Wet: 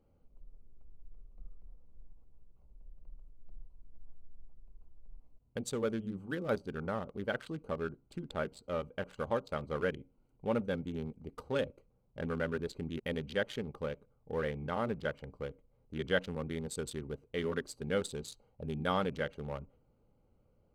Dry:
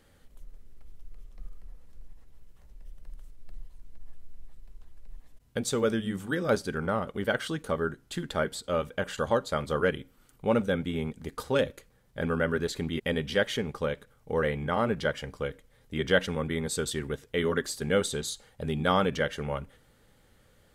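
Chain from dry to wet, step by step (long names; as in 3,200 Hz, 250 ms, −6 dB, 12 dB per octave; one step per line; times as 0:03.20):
adaptive Wiener filter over 25 samples
0:09.92–0:10.45: notch filter 1,200 Hz, Q 5.1
level −7 dB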